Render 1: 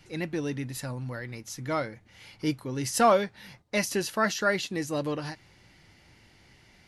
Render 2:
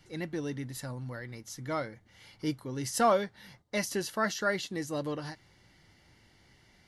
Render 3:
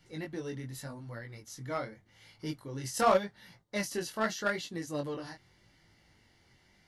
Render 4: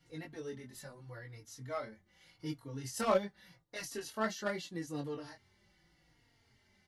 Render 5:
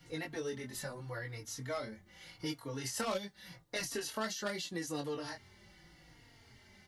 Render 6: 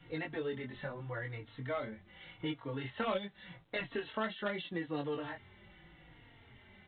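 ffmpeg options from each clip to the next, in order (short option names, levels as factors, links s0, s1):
-af "bandreject=f=2500:w=6.5,volume=0.631"
-filter_complex "[0:a]flanger=delay=17.5:depth=6.1:speed=0.85,asplit=2[s0][s1];[s1]acrusher=bits=3:mix=0:aa=0.5,volume=0.398[s2];[s0][s2]amix=inputs=2:normalize=0"
-filter_complex "[0:a]asplit=2[s0][s1];[s1]adelay=3.7,afreqshift=-0.82[s2];[s0][s2]amix=inputs=2:normalize=1,volume=0.794"
-filter_complex "[0:a]acrossover=split=400|3100[s0][s1][s2];[s0]acompressor=threshold=0.002:ratio=4[s3];[s1]acompressor=threshold=0.00355:ratio=4[s4];[s2]acompressor=threshold=0.00316:ratio=4[s5];[s3][s4][s5]amix=inputs=3:normalize=0,volume=2.99"
-af "volume=1.19" -ar 8000 -c:a pcm_alaw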